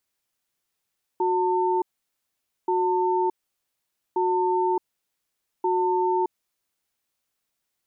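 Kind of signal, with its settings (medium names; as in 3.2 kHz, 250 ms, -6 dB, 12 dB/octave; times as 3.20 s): cadence 366 Hz, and 899 Hz, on 0.62 s, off 0.86 s, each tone -22.5 dBFS 5.83 s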